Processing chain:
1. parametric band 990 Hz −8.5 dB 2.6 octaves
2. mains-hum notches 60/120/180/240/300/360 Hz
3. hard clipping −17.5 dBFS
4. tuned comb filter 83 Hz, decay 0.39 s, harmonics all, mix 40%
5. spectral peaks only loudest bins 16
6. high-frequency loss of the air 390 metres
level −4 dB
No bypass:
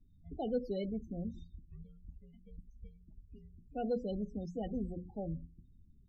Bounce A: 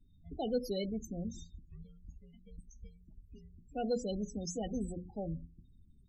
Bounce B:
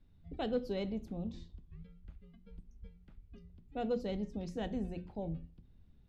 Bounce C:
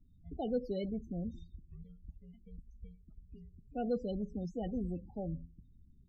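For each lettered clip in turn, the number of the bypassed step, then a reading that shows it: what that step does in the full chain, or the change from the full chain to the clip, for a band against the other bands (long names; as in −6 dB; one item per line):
6, 4 kHz band +8.5 dB
5, 2 kHz band +8.5 dB
2, change in momentary loudness spread −1 LU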